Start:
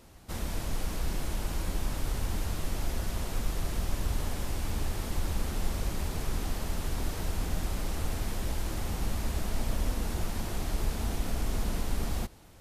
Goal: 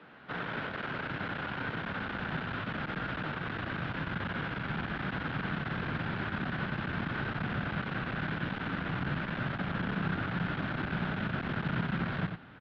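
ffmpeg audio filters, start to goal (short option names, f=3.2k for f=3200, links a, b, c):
-filter_complex "[0:a]aeval=exprs='clip(val(0),-1,0.0224)':c=same,asubboost=boost=5:cutoff=210,highpass=f=200:t=q:w=0.5412,highpass=f=200:t=q:w=1.307,lowpass=f=3.5k:t=q:w=0.5176,lowpass=f=3.5k:t=q:w=0.7071,lowpass=f=3.5k:t=q:w=1.932,afreqshift=-52,equalizer=f=1.5k:w=2.8:g=13,asplit=2[a][b];[b]aecho=0:1:92:0.473[c];[a][c]amix=inputs=2:normalize=0,volume=3dB"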